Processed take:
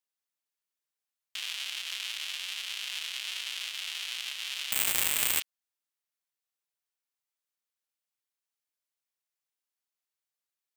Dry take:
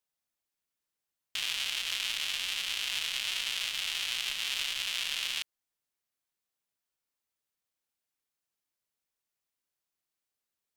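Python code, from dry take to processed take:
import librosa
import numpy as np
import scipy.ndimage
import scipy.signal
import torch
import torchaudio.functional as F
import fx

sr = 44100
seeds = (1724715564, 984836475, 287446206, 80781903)

y = fx.highpass(x, sr, hz=700.0, slope=6)
y = fx.resample_bad(y, sr, factor=8, down='none', up='zero_stuff', at=(4.72, 5.4))
y = F.gain(torch.from_numpy(y), -3.0).numpy()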